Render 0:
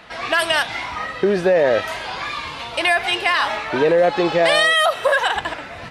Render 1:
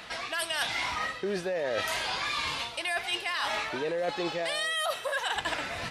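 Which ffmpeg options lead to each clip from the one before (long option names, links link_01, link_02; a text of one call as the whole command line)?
ffmpeg -i in.wav -af "highshelf=frequency=3200:gain=11,areverse,acompressor=threshold=-24dB:ratio=12,areverse,volume=-3.5dB" out.wav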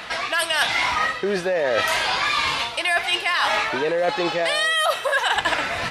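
ffmpeg -i in.wav -af "equalizer=frequency=1300:width=0.43:gain=4.5,volume=6.5dB" out.wav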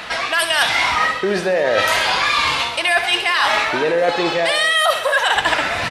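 ffmpeg -i in.wav -af "aecho=1:1:65|130|195|260|325|390|455:0.282|0.163|0.0948|0.055|0.0319|0.0185|0.0107,volume=4dB" out.wav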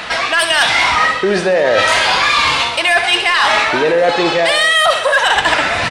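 ffmpeg -i in.wav -af "aresample=22050,aresample=44100,acontrast=60,volume=-1dB" out.wav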